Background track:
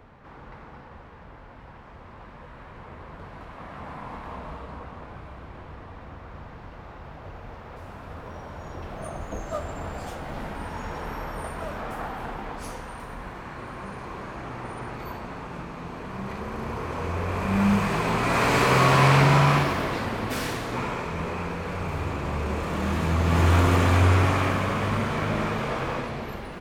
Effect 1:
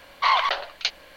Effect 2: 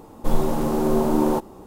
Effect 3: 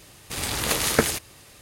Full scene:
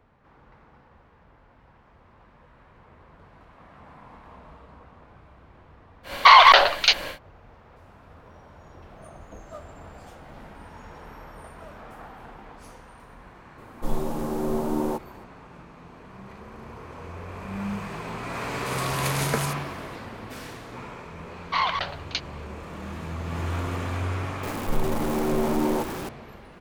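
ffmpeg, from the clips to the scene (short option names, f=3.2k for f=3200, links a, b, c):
-filter_complex "[1:a]asplit=2[a][b];[2:a]asplit=2[c][d];[0:a]volume=-10dB[e];[a]alimiter=level_in=16dB:limit=-1dB:release=50:level=0:latency=1[f];[b]aresample=16000,aresample=44100[g];[d]aeval=exprs='val(0)+0.5*0.075*sgn(val(0))':c=same[h];[f]atrim=end=1.16,asetpts=PTS-STARTPTS,volume=-1dB,afade=t=in:d=0.1,afade=t=out:st=1.06:d=0.1,adelay=6030[i];[c]atrim=end=1.66,asetpts=PTS-STARTPTS,volume=-6.5dB,afade=t=in:d=0.004:c=hsin,afade=t=out:st=1.656:d=0.004:c=hsin,adelay=13580[j];[3:a]atrim=end=1.61,asetpts=PTS-STARTPTS,volume=-7.5dB,afade=t=in:d=0.004:c=hsin,afade=t=out:st=1.606:d=0.004:c=hsin,adelay=18350[k];[g]atrim=end=1.16,asetpts=PTS-STARTPTS,volume=-4.5dB,afade=t=in:d=0.004:c=hsin,afade=t=out:st=1.156:d=0.004:c=hsin,adelay=21300[l];[h]atrim=end=1.66,asetpts=PTS-STARTPTS,volume=-6.5dB,afade=t=in:d=0.004:c=hsin,afade=t=out:st=1.656:d=0.004:c=hsin,adelay=24430[m];[e][i][j][k][l][m]amix=inputs=6:normalize=0"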